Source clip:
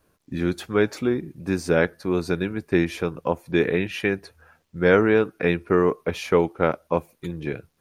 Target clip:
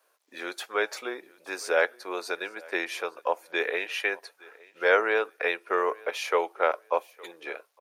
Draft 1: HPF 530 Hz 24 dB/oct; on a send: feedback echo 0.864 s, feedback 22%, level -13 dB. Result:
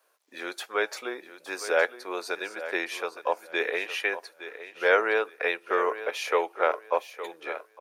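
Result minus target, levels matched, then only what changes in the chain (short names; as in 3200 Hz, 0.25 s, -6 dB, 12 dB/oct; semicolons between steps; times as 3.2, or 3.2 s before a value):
echo-to-direct +11 dB
change: feedback echo 0.864 s, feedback 22%, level -24 dB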